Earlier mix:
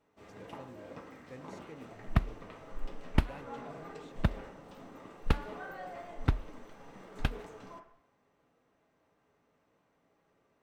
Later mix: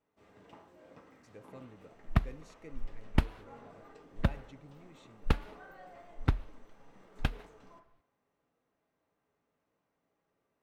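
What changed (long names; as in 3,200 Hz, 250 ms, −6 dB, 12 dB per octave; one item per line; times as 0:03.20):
speech: entry +0.95 s
first sound −8.5 dB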